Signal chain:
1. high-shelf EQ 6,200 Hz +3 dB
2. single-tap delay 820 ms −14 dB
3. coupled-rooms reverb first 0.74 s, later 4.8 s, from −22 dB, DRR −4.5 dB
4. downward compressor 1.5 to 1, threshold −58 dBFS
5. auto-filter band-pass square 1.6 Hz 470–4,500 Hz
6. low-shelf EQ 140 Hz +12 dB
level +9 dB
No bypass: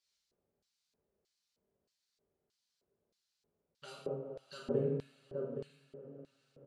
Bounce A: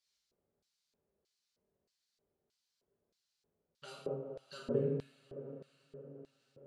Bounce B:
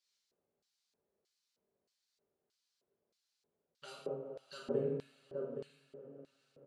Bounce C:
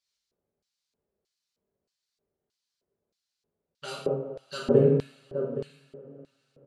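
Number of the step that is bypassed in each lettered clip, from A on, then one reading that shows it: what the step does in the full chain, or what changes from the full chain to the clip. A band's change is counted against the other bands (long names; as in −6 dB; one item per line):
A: 2, change in momentary loudness spread +1 LU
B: 6, 125 Hz band −5.5 dB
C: 4, average gain reduction 8.5 dB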